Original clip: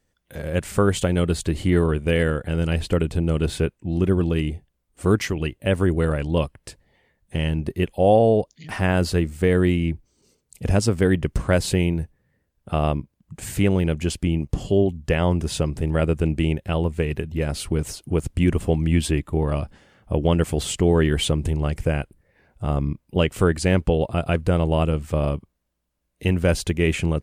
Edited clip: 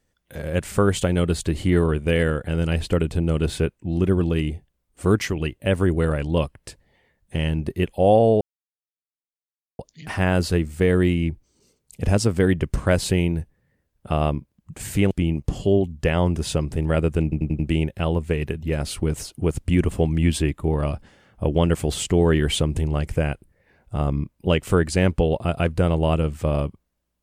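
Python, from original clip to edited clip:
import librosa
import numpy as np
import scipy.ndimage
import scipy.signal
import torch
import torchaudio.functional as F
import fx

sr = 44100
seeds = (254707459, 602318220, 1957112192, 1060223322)

y = fx.edit(x, sr, fx.insert_silence(at_s=8.41, length_s=1.38),
    fx.cut(start_s=13.73, length_s=0.43),
    fx.stutter(start_s=16.28, slice_s=0.09, count=5), tone=tone)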